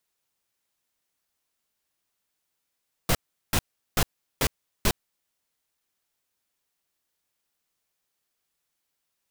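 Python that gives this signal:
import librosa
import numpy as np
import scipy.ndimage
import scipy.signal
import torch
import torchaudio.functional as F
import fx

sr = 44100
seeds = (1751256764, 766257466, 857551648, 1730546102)

y = fx.noise_burst(sr, seeds[0], colour='pink', on_s=0.06, off_s=0.38, bursts=5, level_db=-21.5)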